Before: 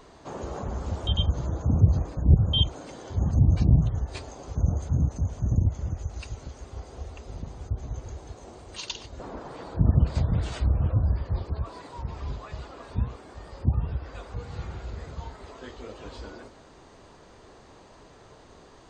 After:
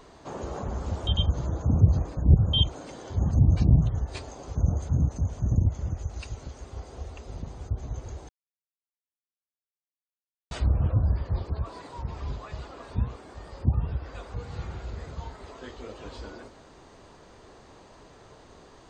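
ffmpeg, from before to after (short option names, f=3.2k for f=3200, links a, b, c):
-filter_complex "[0:a]asplit=3[a][b][c];[a]atrim=end=8.29,asetpts=PTS-STARTPTS,afade=t=out:st=8.286:d=0.004:c=hsin[d];[b]atrim=start=8.29:end=10.51,asetpts=PTS-STARTPTS,volume=0[e];[c]atrim=start=10.51,asetpts=PTS-STARTPTS,afade=t=in:d=0.004:c=hsin[f];[d][e][f]concat=n=3:v=0:a=1"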